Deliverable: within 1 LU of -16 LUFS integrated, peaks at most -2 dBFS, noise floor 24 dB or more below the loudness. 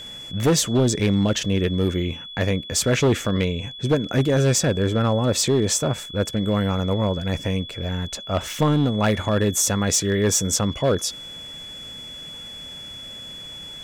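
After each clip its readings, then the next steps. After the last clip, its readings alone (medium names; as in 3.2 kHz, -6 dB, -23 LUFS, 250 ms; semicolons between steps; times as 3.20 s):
clipped samples 1.3%; clipping level -13.0 dBFS; steady tone 3.4 kHz; tone level -35 dBFS; loudness -21.5 LUFS; peak level -13.0 dBFS; loudness target -16.0 LUFS
-> clip repair -13 dBFS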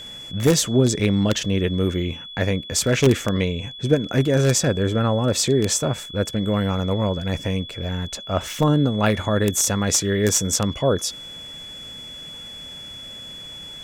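clipped samples 0.0%; steady tone 3.4 kHz; tone level -35 dBFS
-> band-stop 3.4 kHz, Q 30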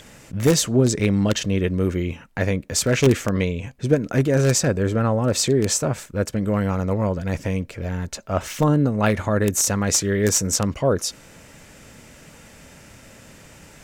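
steady tone not found; loudness -21.0 LUFS; peak level -4.0 dBFS; loudness target -16.0 LUFS
-> trim +5 dB; peak limiter -2 dBFS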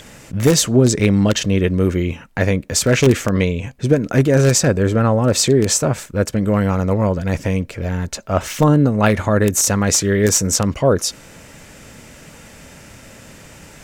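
loudness -16.5 LUFS; peak level -2.0 dBFS; noise floor -42 dBFS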